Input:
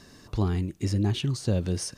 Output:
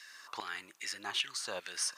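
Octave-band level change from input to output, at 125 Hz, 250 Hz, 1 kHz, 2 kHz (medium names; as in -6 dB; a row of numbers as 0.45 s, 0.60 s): under -40 dB, -28.0 dB, -1.5 dB, +5.0 dB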